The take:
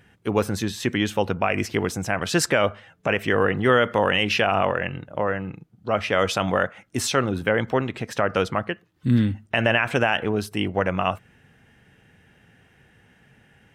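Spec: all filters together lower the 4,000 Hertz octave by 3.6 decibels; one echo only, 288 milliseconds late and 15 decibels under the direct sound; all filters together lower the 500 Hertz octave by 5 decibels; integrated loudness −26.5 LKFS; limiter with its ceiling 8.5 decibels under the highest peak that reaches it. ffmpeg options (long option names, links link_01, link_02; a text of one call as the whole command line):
ffmpeg -i in.wav -af "equalizer=frequency=500:width_type=o:gain=-6,equalizer=frequency=4000:width_type=o:gain=-5.5,alimiter=limit=-17.5dB:level=0:latency=1,aecho=1:1:288:0.178,volume=3.5dB" out.wav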